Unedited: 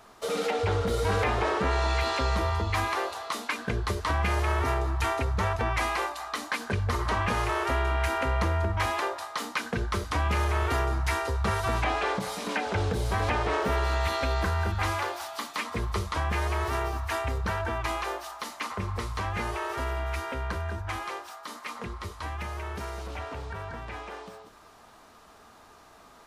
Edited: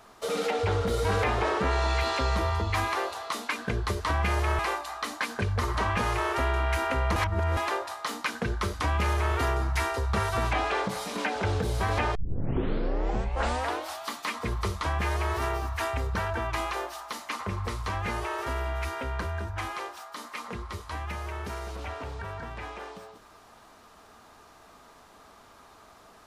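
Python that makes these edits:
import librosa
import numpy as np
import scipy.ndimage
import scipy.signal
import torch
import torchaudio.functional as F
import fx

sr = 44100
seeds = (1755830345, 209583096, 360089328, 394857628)

y = fx.edit(x, sr, fx.cut(start_s=4.59, length_s=1.31),
    fx.reverse_span(start_s=8.47, length_s=0.41),
    fx.tape_start(start_s=13.46, length_s=1.87), tone=tone)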